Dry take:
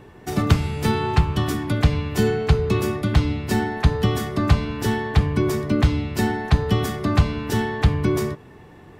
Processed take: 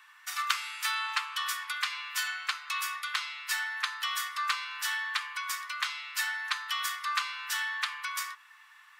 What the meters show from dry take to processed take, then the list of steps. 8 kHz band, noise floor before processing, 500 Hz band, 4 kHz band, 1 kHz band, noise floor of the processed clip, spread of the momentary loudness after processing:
0.0 dB, -45 dBFS, under -40 dB, 0.0 dB, -6.0 dB, -57 dBFS, 4 LU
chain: steep high-pass 1100 Hz 48 dB/oct

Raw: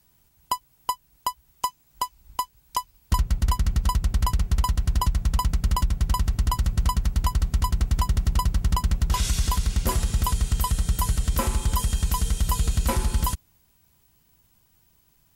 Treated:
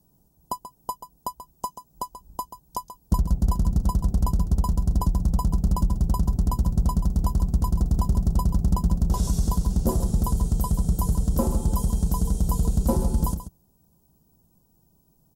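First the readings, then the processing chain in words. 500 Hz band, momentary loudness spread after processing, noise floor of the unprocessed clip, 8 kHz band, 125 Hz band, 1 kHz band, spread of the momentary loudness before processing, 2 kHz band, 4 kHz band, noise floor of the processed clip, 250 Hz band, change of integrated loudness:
+4.0 dB, 13 LU, -63 dBFS, -5.5 dB, +1.0 dB, -4.0 dB, 8 LU, under -15 dB, -11.5 dB, -64 dBFS, +7.5 dB, +1.0 dB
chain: EQ curve 110 Hz 0 dB, 170 Hz +8 dB, 770 Hz +2 dB, 2200 Hz -25 dB, 5400 Hz -7 dB, 13000 Hz -4 dB; echo 0.134 s -11.5 dB

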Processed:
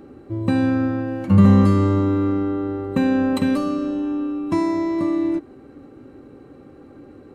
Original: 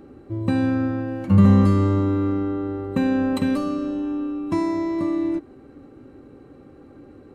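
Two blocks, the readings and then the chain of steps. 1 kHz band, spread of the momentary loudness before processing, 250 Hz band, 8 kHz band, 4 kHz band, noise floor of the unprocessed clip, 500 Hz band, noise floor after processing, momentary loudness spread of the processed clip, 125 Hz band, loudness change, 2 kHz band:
+2.5 dB, 11 LU, +2.0 dB, n/a, +2.5 dB, -47 dBFS, +2.5 dB, -45 dBFS, 11 LU, +1.0 dB, +2.0 dB, +2.5 dB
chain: low shelf 75 Hz -5 dB; gain +2.5 dB

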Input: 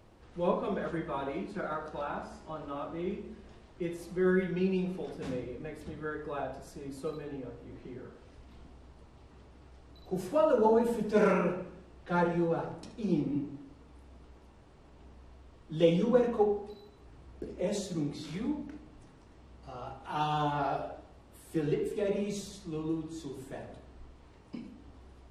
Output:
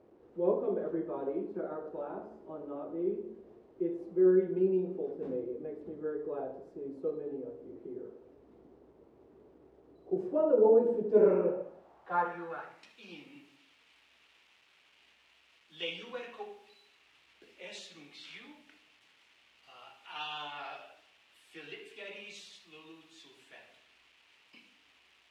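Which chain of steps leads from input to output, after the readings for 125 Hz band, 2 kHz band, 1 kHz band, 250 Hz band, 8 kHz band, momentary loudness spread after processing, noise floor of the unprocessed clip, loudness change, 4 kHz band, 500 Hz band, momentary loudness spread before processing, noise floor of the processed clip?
-12.0 dB, -5.0 dB, -6.0 dB, -4.0 dB, under -10 dB, 22 LU, -56 dBFS, 0.0 dB, +0.5 dB, +0.5 dB, 20 LU, -66 dBFS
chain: requantised 10-bit, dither none; band-pass sweep 400 Hz -> 2700 Hz, 11.37–12.98; gain +5 dB

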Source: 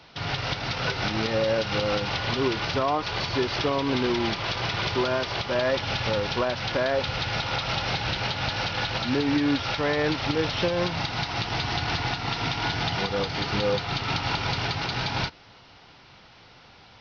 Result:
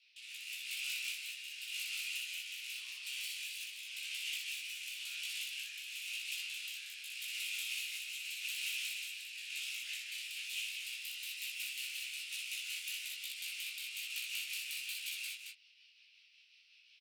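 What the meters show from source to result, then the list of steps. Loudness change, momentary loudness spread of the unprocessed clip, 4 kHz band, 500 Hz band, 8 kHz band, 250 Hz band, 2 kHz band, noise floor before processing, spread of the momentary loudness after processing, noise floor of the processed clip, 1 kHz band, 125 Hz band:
-13.5 dB, 3 LU, -11.0 dB, under -40 dB, n/a, under -40 dB, -11.5 dB, -52 dBFS, 5 LU, -65 dBFS, under -40 dB, under -40 dB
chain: tracing distortion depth 0.15 ms; differentiator; rotary speaker horn 0.9 Hz, later 5.5 Hz, at 9.33; ladder high-pass 2400 Hz, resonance 75%; doubler 15 ms -4 dB; loudspeakers at several distances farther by 21 m -4 dB, 76 m -5 dB; detuned doubles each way 39 cents; gain +4 dB

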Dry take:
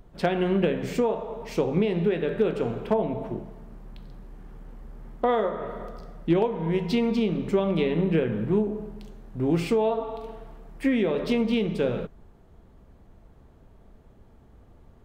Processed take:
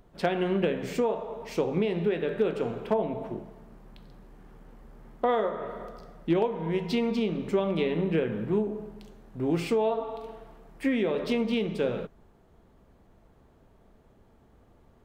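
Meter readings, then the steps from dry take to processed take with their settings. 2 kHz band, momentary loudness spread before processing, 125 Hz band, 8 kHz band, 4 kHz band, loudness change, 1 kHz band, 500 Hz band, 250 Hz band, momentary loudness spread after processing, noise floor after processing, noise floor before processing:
-1.5 dB, 13 LU, -5.0 dB, n/a, -1.5 dB, -3.0 dB, -2.0 dB, -2.5 dB, -3.5 dB, 13 LU, -60 dBFS, -54 dBFS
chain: low shelf 150 Hz -7.5 dB; gain -1.5 dB

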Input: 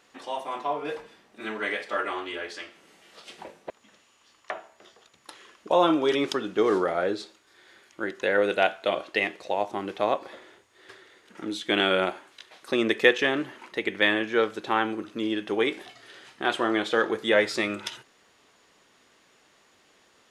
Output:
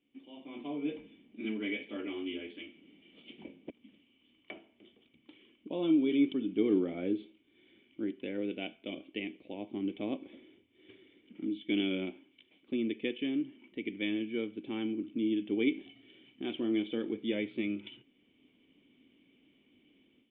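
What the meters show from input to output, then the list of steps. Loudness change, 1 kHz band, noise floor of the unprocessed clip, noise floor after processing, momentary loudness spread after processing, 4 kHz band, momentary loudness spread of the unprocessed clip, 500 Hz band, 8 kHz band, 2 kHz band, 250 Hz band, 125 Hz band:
-8.5 dB, -24.5 dB, -62 dBFS, -70 dBFS, 21 LU, -12.5 dB, 17 LU, -12.0 dB, under -30 dB, -16.5 dB, -1.0 dB, -4.0 dB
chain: AGC; vocal tract filter i; gain -2.5 dB

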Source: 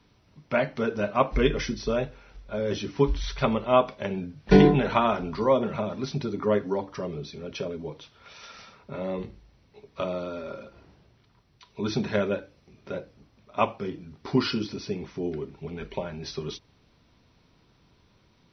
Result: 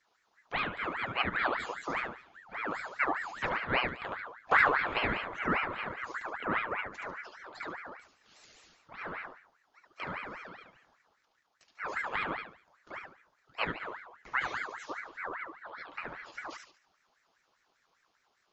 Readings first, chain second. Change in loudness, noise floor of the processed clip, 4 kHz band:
-6.5 dB, -75 dBFS, -5.5 dB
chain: envelope phaser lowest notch 160 Hz, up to 4200 Hz, full sweep at -27.5 dBFS; thinning echo 72 ms, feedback 37%, high-pass 180 Hz, level -3.5 dB; ring modulator with a swept carrier 1300 Hz, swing 45%, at 5 Hz; gain -6.5 dB

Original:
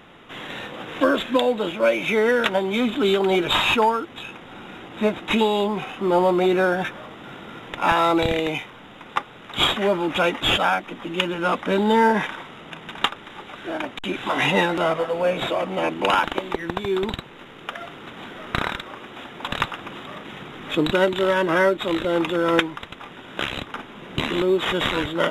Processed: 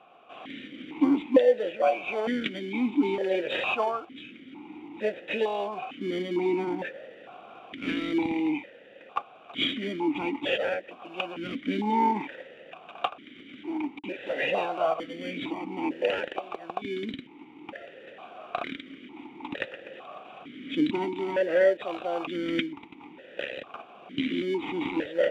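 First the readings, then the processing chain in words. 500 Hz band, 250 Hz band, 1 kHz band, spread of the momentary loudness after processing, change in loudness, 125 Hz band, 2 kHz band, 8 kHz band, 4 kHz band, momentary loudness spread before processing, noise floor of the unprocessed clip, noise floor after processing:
-6.5 dB, -4.5 dB, -9.0 dB, 20 LU, -7.0 dB, -12.5 dB, -10.0 dB, under -15 dB, -11.0 dB, 18 LU, -43 dBFS, -51 dBFS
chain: in parallel at -7 dB: sample-and-hold 34×; on the sum: vowel sequencer 2.2 Hz; gain +3 dB

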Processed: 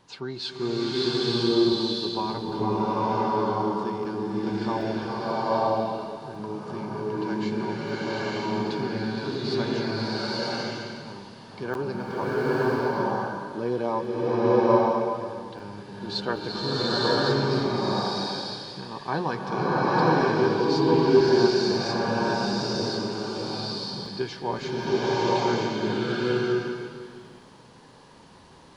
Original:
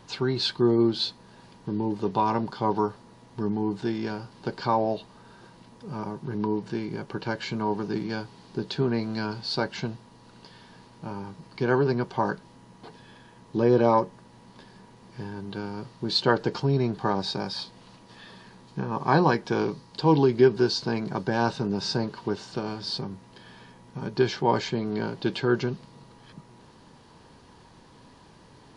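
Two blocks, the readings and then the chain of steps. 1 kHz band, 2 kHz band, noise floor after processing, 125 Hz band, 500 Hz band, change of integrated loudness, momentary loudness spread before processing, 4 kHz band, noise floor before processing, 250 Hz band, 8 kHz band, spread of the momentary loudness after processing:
+2.5 dB, +3.0 dB, -50 dBFS, -1.0 dB, +3.0 dB, +1.0 dB, 16 LU, +3.0 dB, -53 dBFS, +1.5 dB, n/a, 13 LU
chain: low shelf 150 Hz -7 dB; crackling interface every 0.77 s, samples 512, zero, from 0.96; bloom reverb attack 0.96 s, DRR -9 dB; gain -6.5 dB

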